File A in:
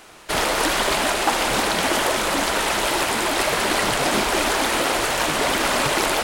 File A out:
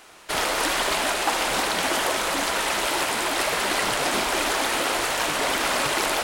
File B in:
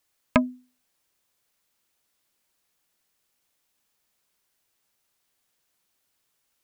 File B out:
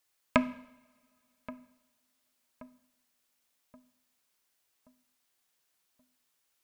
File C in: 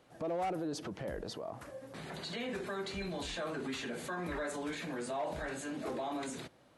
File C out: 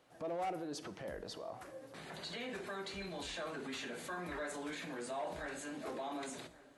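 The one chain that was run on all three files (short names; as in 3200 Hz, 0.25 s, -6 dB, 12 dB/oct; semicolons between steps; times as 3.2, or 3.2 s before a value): low shelf 360 Hz -6 dB; darkening echo 1.127 s, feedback 47%, low-pass 1300 Hz, level -17 dB; two-slope reverb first 0.78 s, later 3.2 s, from -25 dB, DRR 12.5 dB; gain -2.5 dB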